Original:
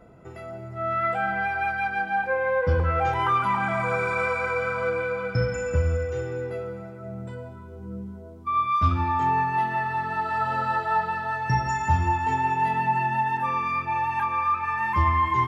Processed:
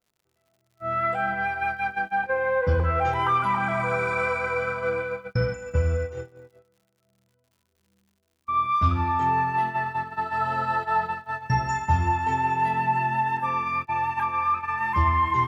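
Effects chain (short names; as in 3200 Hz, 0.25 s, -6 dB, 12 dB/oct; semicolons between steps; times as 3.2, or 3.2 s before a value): gate -27 dBFS, range -34 dB; crackle 130/s -53 dBFS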